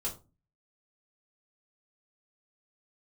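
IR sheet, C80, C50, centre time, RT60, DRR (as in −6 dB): 18.0 dB, 11.5 dB, 17 ms, 0.30 s, −5.0 dB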